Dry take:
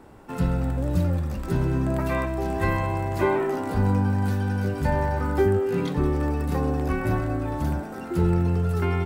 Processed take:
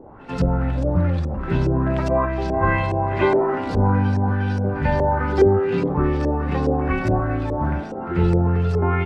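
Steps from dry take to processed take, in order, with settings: LFO low-pass saw up 2.4 Hz 470–6100 Hz; pre-echo 90 ms -16 dB; trim +3 dB

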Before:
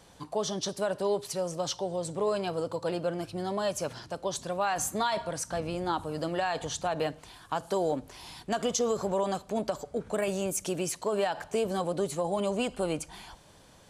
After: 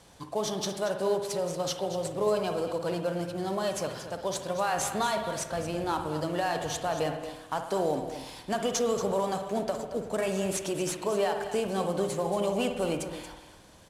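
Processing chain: CVSD coder 64 kbps; delay 231 ms -11.5 dB; on a send at -6.5 dB: reverberation RT60 1.0 s, pre-delay 52 ms

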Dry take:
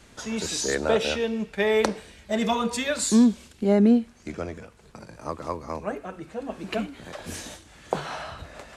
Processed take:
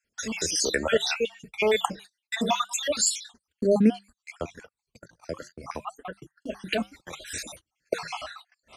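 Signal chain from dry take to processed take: random holes in the spectrogram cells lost 58%; tilt shelf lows -3.5 dB, about 1.2 kHz; hum notches 50/100/150/200 Hz; reverb removal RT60 0.91 s; flange 0.66 Hz, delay 1.3 ms, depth 3.6 ms, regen -88%; gate -52 dBFS, range -29 dB; trim +8.5 dB

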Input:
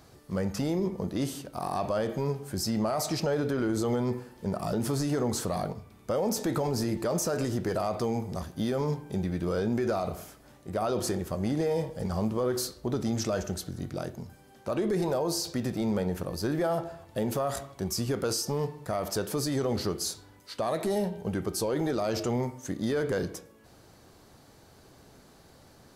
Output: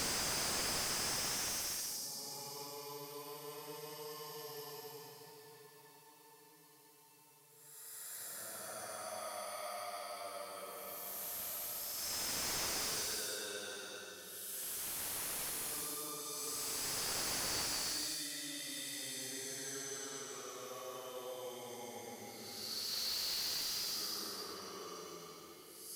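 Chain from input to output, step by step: Paulstretch 16×, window 0.10 s, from 18.35 s; differentiator; slew-rate limiter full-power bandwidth 57 Hz; trim +3.5 dB

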